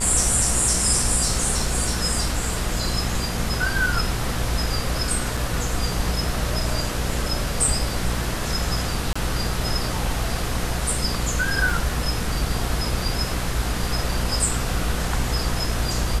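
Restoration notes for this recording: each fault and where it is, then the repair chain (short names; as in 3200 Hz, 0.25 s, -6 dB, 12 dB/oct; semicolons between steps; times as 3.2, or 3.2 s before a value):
buzz 60 Hz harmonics 35 -28 dBFS
5.37 gap 4.3 ms
9.13–9.15 gap 25 ms
11.7 gap 2.1 ms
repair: de-hum 60 Hz, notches 35; interpolate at 5.37, 4.3 ms; interpolate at 9.13, 25 ms; interpolate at 11.7, 2.1 ms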